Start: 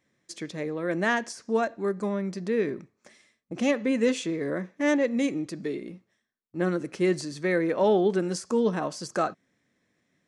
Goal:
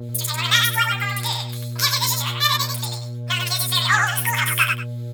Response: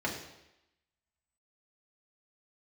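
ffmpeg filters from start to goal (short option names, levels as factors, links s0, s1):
-filter_complex "[0:a]highpass=f=900:w=0.5412,highpass=f=900:w=1.3066,equalizer=f=1600:w=0.78:g=-5.5,apsyclip=14.1,asplit=2[s0][s1];[s1]acompressor=threshold=0.0447:ratio=5,volume=0.794[s2];[s0][s2]amix=inputs=2:normalize=0,aeval=exprs='val(0)+0.0501*(sin(2*PI*60*n/s)+sin(2*PI*2*60*n/s)/2+sin(2*PI*3*60*n/s)/3+sin(2*PI*4*60*n/s)/4+sin(2*PI*5*60*n/s)/5)':c=same,aeval=exprs='sgn(val(0))*max(abs(val(0))-0.00708,0)':c=same,flanger=delay=17:depth=3.1:speed=0.92,asplit=2[s3][s4];[s4]aecho=0:1:64|186|381:0.335|0.631|0.158[s5];[s3][s5]amix=inputs=2:normalize=0,asetrate=88200,aresample=44100,adynamicequalizer=threshold=0.0562:dfrequency=2800:dqfactor=0.7:tfrequency=2800:tqfactor=0.7:attack=5:release=100:ratio=0.375:range=2.5:mode=cutabove:tftype=highshelf,volume=0.75"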